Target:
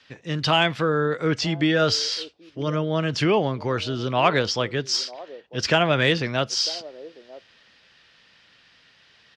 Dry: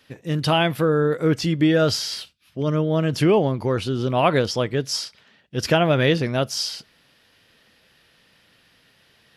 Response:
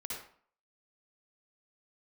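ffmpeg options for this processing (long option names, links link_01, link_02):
-filter_complex "[0:a]lowpass=frequency=6500:width=0.5412,lowpass=frequency=6500:width=1.3066,acrossover=split=360|860[link_01][link_02][link_03];[link_02]aecho=1:1:949:0.282[link_04];[link_03]acontrast=80[link_05];[link_01][link_04][link_05]amix=inputs=3:normalize=0,volume=-4dB"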